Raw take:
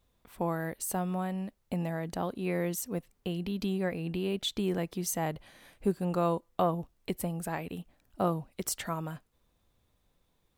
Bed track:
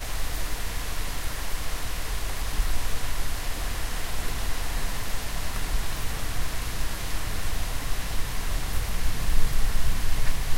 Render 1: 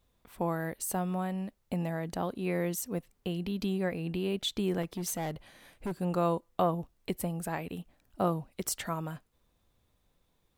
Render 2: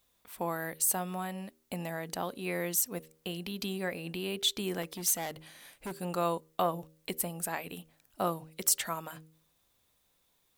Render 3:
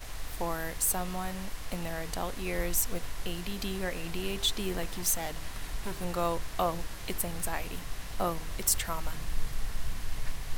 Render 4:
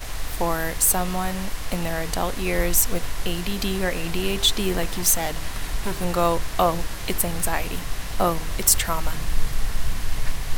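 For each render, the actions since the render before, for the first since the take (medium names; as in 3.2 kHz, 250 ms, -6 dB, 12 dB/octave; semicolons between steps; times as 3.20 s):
4.82–5.96 s: hard clipper -30.5 dBFS
tilt EQ +2.5 dB/octave; de-hum 79.15 Hz, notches 7
add bed track -10 dB
trim +9.5 dB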